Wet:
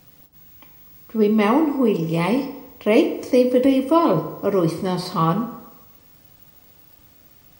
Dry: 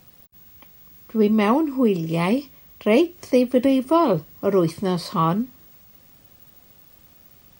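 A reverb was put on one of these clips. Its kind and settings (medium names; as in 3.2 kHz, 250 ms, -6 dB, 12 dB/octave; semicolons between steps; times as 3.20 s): FDN reverb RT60 1 s, low-frequency decay 0.75×, high-frequency decay 0.6×, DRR 5.5 dB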